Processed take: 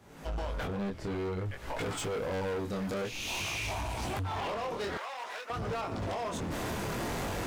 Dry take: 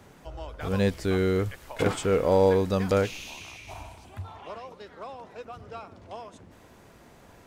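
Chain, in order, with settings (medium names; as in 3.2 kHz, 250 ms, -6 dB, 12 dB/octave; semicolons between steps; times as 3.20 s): recorder AGC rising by 54 dB/s; chorus 0.52 Hz, delay 17.5 ms, depth 8 ms; 0.66–1.80 s: low-pass 1.6 kHz -> 3.5 kHz 6 dB/octave; hard clipper -28 dBFS, distortion -8 dB; 4.97–5.50 s: high-pass 1 kHz 12 dB/octave; trim -3.5 dB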